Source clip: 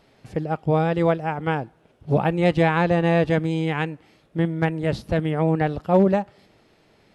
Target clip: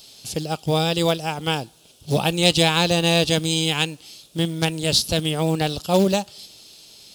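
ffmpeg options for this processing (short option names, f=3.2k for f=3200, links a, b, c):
-af "aexciter=amount=12.4:drive=7.2:freq=3k,acrusher=bits=6:mode=log:mix=0:aa=0.000001,volume=-1dB"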